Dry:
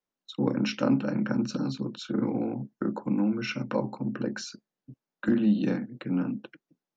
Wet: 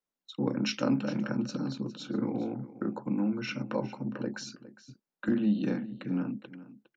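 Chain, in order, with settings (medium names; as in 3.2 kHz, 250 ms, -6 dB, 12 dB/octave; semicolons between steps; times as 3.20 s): 0.66–1.30 s: treble shelf 4.1 kHz +9.5 dB; delay 409 ms -16.5 dB; trim -3.5 dB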